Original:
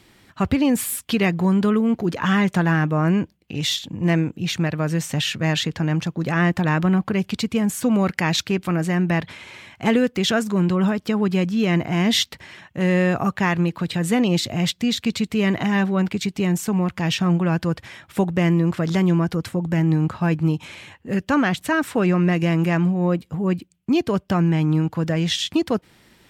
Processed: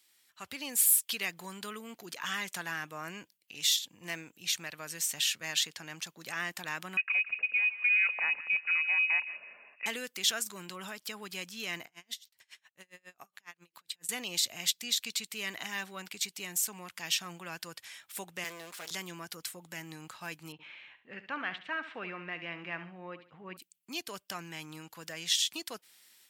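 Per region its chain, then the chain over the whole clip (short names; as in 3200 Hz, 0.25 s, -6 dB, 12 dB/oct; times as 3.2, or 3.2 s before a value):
6.97–9.86 inverted band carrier 2700 Hz + notch 330 Hz, Q 7.4 + thin delay 0.166 s, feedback 34%, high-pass 1600 Hz, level -13 dB
11.85–14.09 compressor 5:1, threshold -26 dBFS + dB-linear tremolo 7.3 Hz, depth 33 dB
18.44–18.91 minimum comb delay 5 ms + HPF 280 Hz
20.52–23.57 LPF 2800 Hz 24 dB/oct + feedback echo 70 ms, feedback 30%, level -12 dB
whole clip: differentiator; AGC gain up to 7.5 dB; gain -6.5 dB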